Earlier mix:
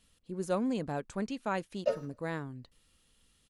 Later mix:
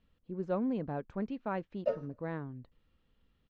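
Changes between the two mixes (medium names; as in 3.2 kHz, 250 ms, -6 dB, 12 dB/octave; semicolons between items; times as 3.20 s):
speech: add distance through air 120 m; master: add tape spacing loss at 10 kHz 29 dB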